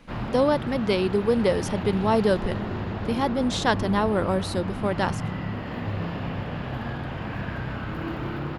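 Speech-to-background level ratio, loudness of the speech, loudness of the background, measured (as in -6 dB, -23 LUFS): 7.0 dB, -25.0 LUFS, -32.0 LUFS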